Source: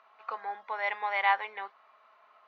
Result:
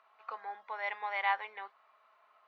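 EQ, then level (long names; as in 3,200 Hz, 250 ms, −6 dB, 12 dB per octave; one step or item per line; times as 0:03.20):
low-shelf EQ 220 Hz −6.5 dB
−5.0 dB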